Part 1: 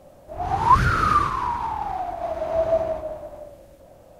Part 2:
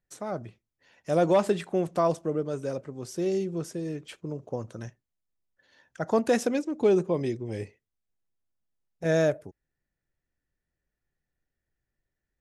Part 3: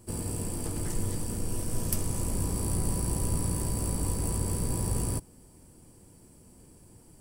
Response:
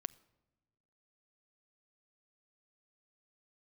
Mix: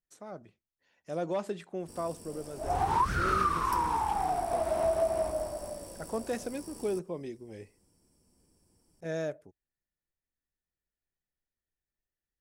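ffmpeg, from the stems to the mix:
-filter_complex "[0:a]acompressor=threshold=-23dB:ratio=6,adelay=2300,volume=-1.5dB[a];[1:a]volume=-10.5dB[b];[2:a]acrossover=split=190[c][d];[c]acompressor=threshold=-41dB:ratio=6[e];[e][d]amix=inputs=2:normalize=0,equalizer=f=5.4k:w=6.8:g=13.5,adelay=1800,volume=-14dB[f];[a][b][f]amix=inputs=3:normalize=0,equalizer=f=120:t=o:w=0.33:g=-8"

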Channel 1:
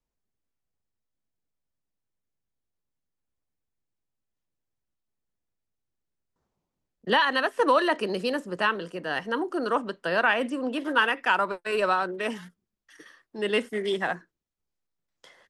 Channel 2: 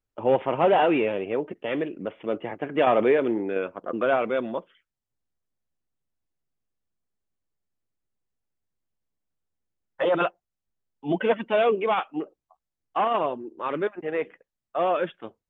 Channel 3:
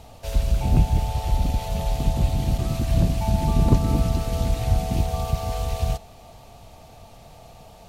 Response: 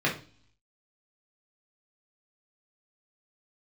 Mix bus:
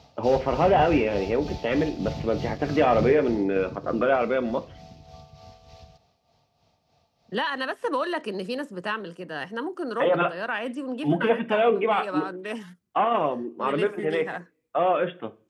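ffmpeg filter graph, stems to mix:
-filter_complex "[0:a]adelay=250,volume=-4dB[a];[1:a]volume=2.5dB,asplit=3[b][c][d];[c]volume=-22.5dB[e];[2:a]highshelf=f=7.1k:t=q:w=3:g=-12,tremolo=f=3.3:d=0.61,volume=-7dB,afade=t=out:st=2.79:d=0.71:silence=0.251189,asplit=2[f][g];[g]volume=-21dB[h];[d]apad=whole_len=694520[i];[a][i]sidechaincompress=threshold=-22dB:ratio=4:attack=47:release=959[j];[j][b]amix=inputs=2:normalize=0,lowshelf=f=190:g=8,acompressor=threshold=-23dB:ratio=2,volume=0dB[k];[3:a]atrim=start_sample=2205[l];[e][h]amix=inputs=2:normalize=0[m];[m][l]afir=irnorm=-1:irlink=0[n];[f][k][n]amix=inputs=3:normalize=0,highpass=82"

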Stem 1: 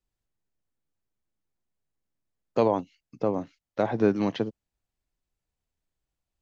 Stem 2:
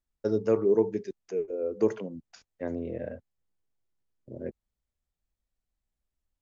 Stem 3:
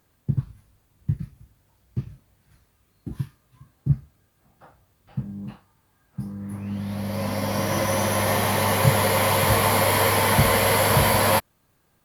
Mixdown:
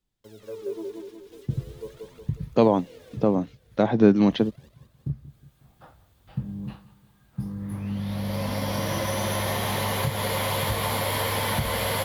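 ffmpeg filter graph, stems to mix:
-filter_complex "[0:a]equalizer=f=190:t=o:w=1.4:g=7.5,volume=2dB,asplit=2[a][b];[1:a]acrusher=bits=6:mix=0:aa=0.000001,aphaser=in_gain=1:out_gain=1:delay=4.5:decay=0.73:speed=0.42:type=triangular,volume=-17.5dB,asplit=2[c][d];[d]volume=-3.5dB[e];[2:a]lowshelf=f=65:g=9.5,acompressor=threshold=-23dB:ratio=6,adelay=1200,volume=-0.5dB,asplit=2[f][g];[g]volume=-19dB[h];[b]apad=whole_len=584296[i];[f][i]sidechaincompress=threshold=-24dB:ratio=8:attack=16:release=1180[j];[e][h]amix=inputs=2:normalize=0,aecho=0:1:182|364|546|728|910|1092|1274:1|0.49|0.24|0.118|0.0576|0.0282|0.0138[k];[a][c][j][k]amix=inputs=4:normalize=0,equalizer=f=3.5k:t=o:w=0.48:g=6"

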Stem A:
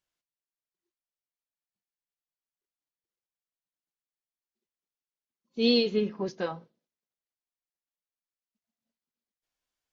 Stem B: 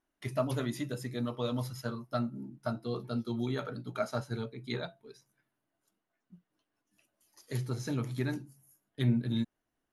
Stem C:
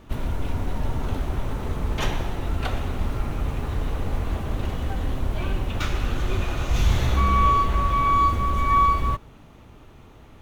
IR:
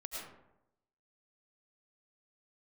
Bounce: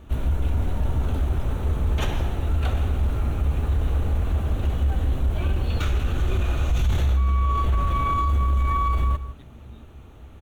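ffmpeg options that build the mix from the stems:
-filter_complex "[0:a]volume=-18.5dB[a];[1:a]acompressor=threshold=-40dB:ratio=6,adelay=400,volume=-10dB[b];[2:a]equalizer=f=1k:t=o:w=0.33:g=-4,equalizer=f=2k:t=o:w=0.33:g=-4,equalizer=f=5k:t=o:w=0.33:g=-10,volume=-0.5dB,asplit=2[c][d];[d]volume=-17dB,aecho=0:1:165:1[e];[a][b][c][e]amix=inputs=4:normalize=0,equalizer=f=67:w=2.6:g=12.5,alimiter=limit=-15dB:level=0:latency=1:release=12"

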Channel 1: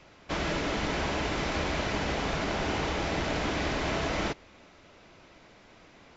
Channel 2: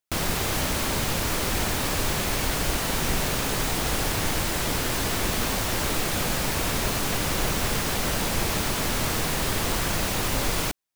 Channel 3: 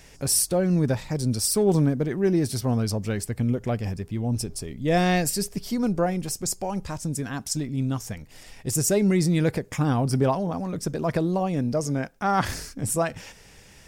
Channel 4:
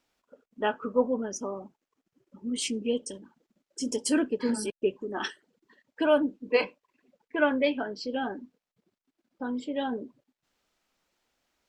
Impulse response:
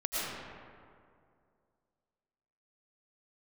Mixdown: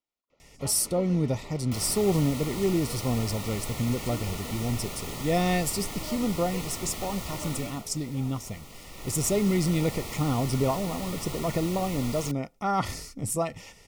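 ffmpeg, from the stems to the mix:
-filter_complex "[0:a]adelay=300,volume=-17.5dB[a];[1:a]adelay=1600,volume=-0.5dB,afade=t=out:st=7.57:d=0.26:silence=0.281838,afade=t=in:st=8.91:d=0.37:silence=0.298538[b];[2:a]adelay=400,volume=-3.5dB[c];[3:a]volume=-17.5dB[d];[a][b][c][d]amix=inputs=4:normalize=0,asuperstop=centerf=1600:order=20:qfactor=4.8"

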